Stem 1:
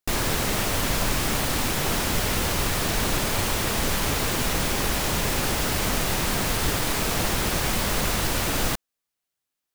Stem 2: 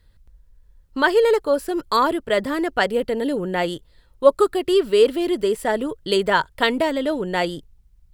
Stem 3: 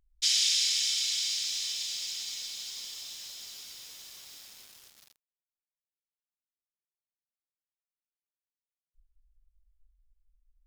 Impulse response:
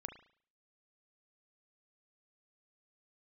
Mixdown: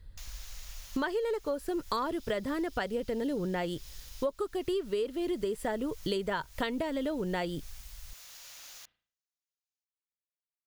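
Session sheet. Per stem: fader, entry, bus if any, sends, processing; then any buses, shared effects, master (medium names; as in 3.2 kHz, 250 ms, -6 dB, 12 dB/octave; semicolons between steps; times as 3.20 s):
-8.5 dB, 0.10 s, bus A, send -13 dB, pre-emphasis filter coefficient 0.97; auto duck -18 dB, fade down 1.90 s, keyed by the second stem
-2.5 dB, 0.00 s, no bus, no send, none
-17.5 dB, 1.75 s, bus A, no send, none
bus A: 0.0 dB, brick-wall FIR band-pass 470–7200 Hz; compression, threshold -51 dBFS, peak gain reduction 10.5 dB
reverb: on, RT60 0.50 s, pre-delay 35 ms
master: bass shelf 200 Hz +9 dB; compression 10:1, threshold -29 dBFS, peak gain reduction 20 dB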